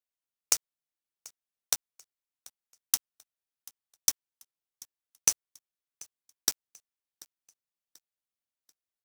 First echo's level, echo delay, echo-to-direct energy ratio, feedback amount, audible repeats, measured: −23.0 dB, 737 ms, −22.5 dB, 39%, 2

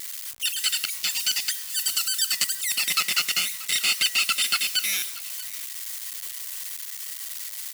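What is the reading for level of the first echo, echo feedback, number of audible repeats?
−19.5 dB, repeats not evenly spaced, 1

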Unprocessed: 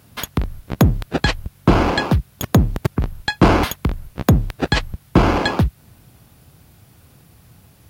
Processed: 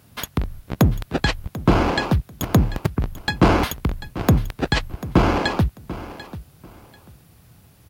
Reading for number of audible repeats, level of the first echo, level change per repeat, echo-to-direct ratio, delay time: 2, −15.5 dB, −13.0 dB, −15.5 dB, 741 ms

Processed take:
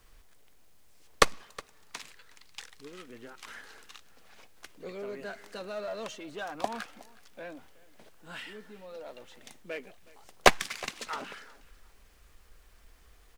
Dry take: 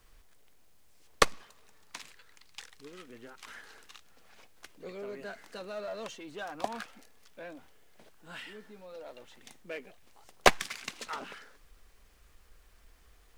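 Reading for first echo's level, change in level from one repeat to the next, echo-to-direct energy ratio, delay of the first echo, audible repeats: −22.0 dB, −12.5 dB, −22.0 dB, 366 ms, 2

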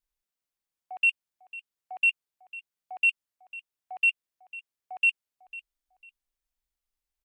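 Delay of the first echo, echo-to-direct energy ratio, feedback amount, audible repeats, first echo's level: 499 ms, −18.0 dB, 26%, 2, −18.5 dB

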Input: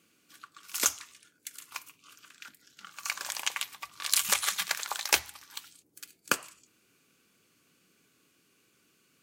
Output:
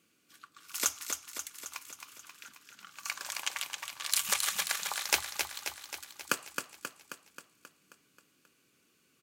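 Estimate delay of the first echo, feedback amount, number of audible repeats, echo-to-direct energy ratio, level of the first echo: 267 ms, 60%, 7, −4.0 dB, −6.0 dB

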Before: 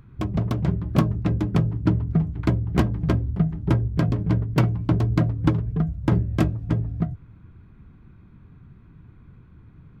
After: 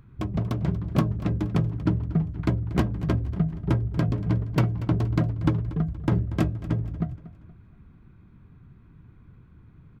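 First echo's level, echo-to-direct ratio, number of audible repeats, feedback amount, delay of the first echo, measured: −17.0 dB, −16.0 dB, 3, 42%, 236 ms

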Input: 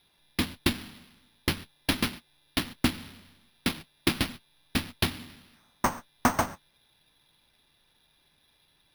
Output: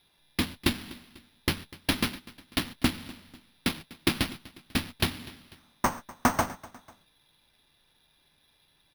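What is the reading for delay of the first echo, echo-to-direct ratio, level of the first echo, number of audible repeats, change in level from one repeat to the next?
247 ms, −19.5 dB, −20.5 dB, 2, −6.5 dB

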